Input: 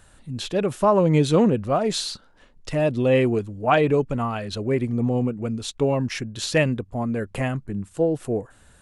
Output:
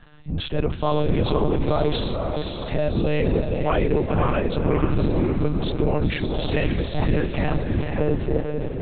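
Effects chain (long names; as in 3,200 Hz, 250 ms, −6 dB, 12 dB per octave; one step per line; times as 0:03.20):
sub-octave generator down 2 octaves, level 0 dB
brickwall limiter −16.5 dBFS, peak gain reduction 11.5 dB
feedback delay with all-pass diffusion 509 ms, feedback 46%, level −4 dB
on a send at −15 dB: convolution reverb RT60 0.20 s, pre-delay 9 ms
on the sum: one-pitch LPC vocoder at 8 kHz 150 Hz
level +2.5 dB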